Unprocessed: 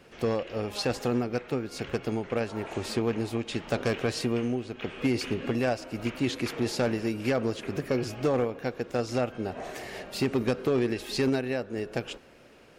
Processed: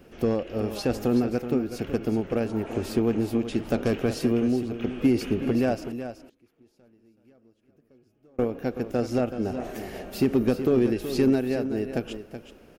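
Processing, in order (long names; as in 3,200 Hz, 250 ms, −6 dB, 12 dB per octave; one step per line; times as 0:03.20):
octave-band graphic EQ 125/500/1,000/2,000/4,000/8,000 Hz −7/−5/−9/−9/−10/−10 dB
0:05.88–0:08.39: gate with flip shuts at −41 dBFS, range −35 dB
single-tap delay 376 ms −10.5 dB
level +9 dB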